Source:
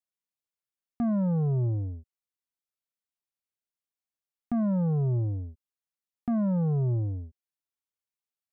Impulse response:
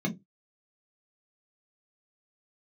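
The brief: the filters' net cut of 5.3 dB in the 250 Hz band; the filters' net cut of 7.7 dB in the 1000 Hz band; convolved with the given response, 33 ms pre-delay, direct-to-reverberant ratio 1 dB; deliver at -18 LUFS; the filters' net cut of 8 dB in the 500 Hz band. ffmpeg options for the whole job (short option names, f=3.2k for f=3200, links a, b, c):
-filter_complex "[0:a]equalizer=f=250:t=o:g=-7,equalizer=f=500:t=o:g=-6,equalizer=f=1k:t=o:g=-7.5,asplit=2[a][b];[1:a]atrim=start_sample=2205,adelay=33[c];[b][c]afir=irnorm=-1:irlink=0,volume=-7dB[d];[a][d]amix=inputs=2:normalize=0,volume=-1dB"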